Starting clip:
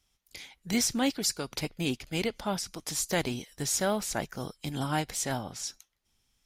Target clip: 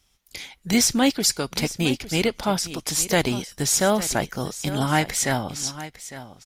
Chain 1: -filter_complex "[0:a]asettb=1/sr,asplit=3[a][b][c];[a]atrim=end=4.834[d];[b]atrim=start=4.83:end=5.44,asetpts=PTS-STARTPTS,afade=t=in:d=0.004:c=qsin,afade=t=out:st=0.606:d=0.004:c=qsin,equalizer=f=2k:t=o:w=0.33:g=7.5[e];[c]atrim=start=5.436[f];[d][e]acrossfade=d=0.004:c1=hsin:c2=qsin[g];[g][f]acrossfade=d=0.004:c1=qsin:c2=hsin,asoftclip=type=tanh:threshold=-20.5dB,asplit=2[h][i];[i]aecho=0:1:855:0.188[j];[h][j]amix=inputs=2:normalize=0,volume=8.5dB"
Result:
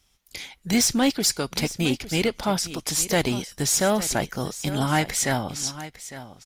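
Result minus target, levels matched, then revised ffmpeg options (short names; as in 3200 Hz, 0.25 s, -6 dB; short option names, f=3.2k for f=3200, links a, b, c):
soft clip: distortion +18 dB
-filter_complex "[0:a]asettb=1/sr,asplit=3[a][b][c];[a]atrim=end=4.834[d];[b]atrim=start=4.83:end=5.44,asetpts=PTS-STARTPTS,afade=t=in:d=0.004:c=qsin,afade=t=out:st=0.606:d=0.004:c=qsin,equalizer=f=2k:t=o:w=0.33:g=7.5[e];[c]atrim=start=5.436[f];[d][e]acrossfade=d=0.004:c1=hsin:c2=qsin[g];[g][f]acrossfade=d=0.004:c1=qsin:c2=hsin,asoftclip=type=tanh:threshold=-10dB,asplit=2[h][i];[i]aecho=0:1:855:0.188[j];[h][j]amix=inputs=2:normalize=0,volume=8.5dB"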